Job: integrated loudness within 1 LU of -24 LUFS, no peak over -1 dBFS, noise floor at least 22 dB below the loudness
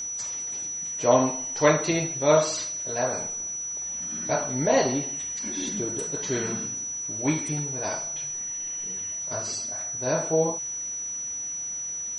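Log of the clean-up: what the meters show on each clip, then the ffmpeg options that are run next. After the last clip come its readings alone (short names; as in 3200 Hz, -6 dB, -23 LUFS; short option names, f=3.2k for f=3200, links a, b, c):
steady tone 5900 Hz; tone level -30 dBFS; loudness -26.5 LUFS; peak -4.5 dBFS; loudness target -24.0 LUFS
-> -af "bandreject=f=5.9k:w=30"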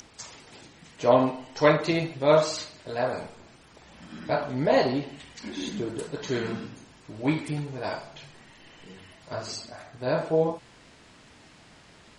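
steady tone none; loudness -27.0 LUFS; peak -4.5 dBFS; loudness target -24.0 LUFS
-> -af "volume=3dB"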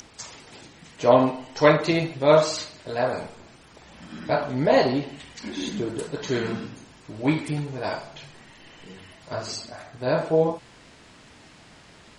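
loudness -24.0 LUFS; peak -1.5 dBFS; noise floor -51 dBFS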